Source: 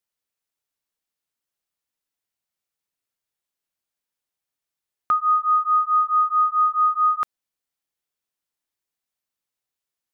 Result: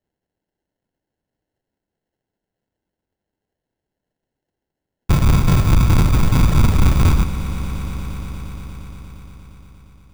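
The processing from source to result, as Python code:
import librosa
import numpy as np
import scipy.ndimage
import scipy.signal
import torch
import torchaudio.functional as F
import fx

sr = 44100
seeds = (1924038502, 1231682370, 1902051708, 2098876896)

p1 = fx.envelope_sharpen(x, sr, power=3.0)
p2 = fx.peak_eq(p1, sr, hz=1000.0, db=14.5, octaves=1.2)
p3 = fx.schmitt(p2, sr, flips_db=-26.0)
p4 = p2 + (p3 * 10.0 ** (-7.0 / 20.0))
p5 = fx.whisperise(p4, sr, seeds[0])
p6 = fx.sample_hold(p5, sr, seeds[1], rate_hz=1200.0, jitter_pct=0)
p7 = 10.0 ** (-11.5 / 20.0) * np.tanh(p6 / 10.0 ** (-11.5 / 20.0))
p8 = p7 + fx.echo_swell(p7, sr, ms=117, loudest=5, wet_db=-18.0, dry=0)
y = p8 * 10.0 ** (2.0 / 20.0)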